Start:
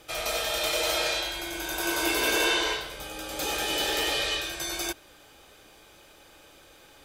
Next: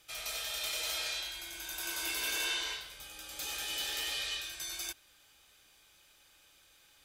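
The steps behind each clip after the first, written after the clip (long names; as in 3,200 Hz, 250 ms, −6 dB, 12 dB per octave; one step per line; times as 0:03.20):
guitar amp tone stack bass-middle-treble 5-5-5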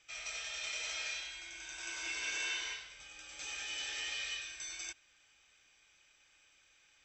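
Chebyshev low-pass with heavy ripple 7,900 Hz, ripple 9 dB
level +1 dB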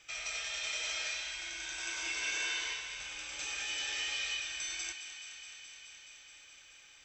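in parallel at +2 dB: downward compressor, threshold −49 dBFS, peak gain reduction 14 dB
on the sum: feedback echo with a high-pass in the loop 212 ms, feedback 82%, high-pass 480 Hz, level −11 dB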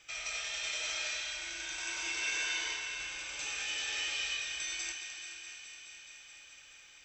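four-comb reverb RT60 3.8 s, DRR 6.5 dB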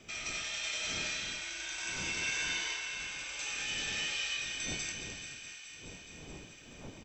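wind on the microphone 340 Hz −52 dBFS
far-end echo of a speakerphone 120 ms, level −16 dB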